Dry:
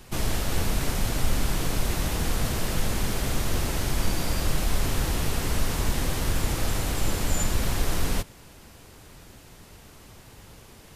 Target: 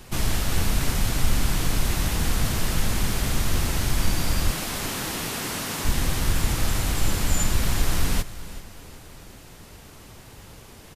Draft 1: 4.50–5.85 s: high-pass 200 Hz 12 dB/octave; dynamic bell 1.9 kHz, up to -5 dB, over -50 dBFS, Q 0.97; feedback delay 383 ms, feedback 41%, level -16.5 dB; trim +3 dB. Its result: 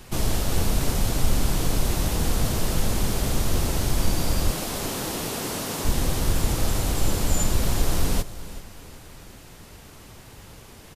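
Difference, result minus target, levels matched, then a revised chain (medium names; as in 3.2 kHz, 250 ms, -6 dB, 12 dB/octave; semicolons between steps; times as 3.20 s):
500 Hz band +4.0 dB
4.50–5.85 s: high-pass 200 Hz 12 dB/octave; dynamic bell 500 Hz, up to -5 dB, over -50 dBFS, Q 0.97; feedback delay 383 ms, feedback 41%, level -16.5 dB; trim +3 dB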